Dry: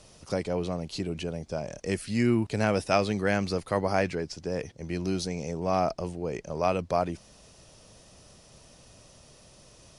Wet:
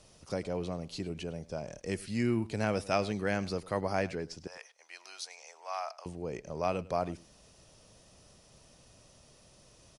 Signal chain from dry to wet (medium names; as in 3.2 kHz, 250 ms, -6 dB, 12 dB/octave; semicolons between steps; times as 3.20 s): 4.47–6.06 s: high-pass 820 Hz 24 dB/octave; delay 102 ms -20 dB; trim -5.5 dB